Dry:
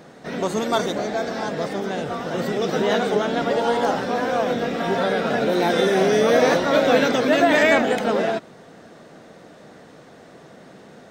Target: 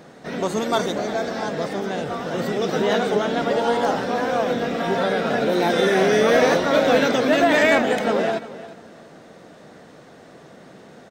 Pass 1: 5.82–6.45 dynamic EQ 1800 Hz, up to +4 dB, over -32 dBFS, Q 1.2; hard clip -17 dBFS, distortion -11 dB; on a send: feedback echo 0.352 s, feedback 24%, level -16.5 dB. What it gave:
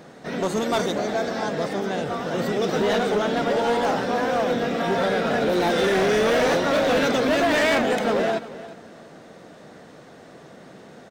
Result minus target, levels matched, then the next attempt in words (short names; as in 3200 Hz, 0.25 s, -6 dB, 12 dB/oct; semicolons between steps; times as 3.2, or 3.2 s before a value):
hard clip: distortion +15 dB
5.82–6.45 dynamic EQ 1800 Hz, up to +4 dB, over -32 dBFS, Q 1.2; hard clip -9.5 dBFS, distortion -26 dB; on a send: feedback echo 0.352 s, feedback 24%, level -16.5 dB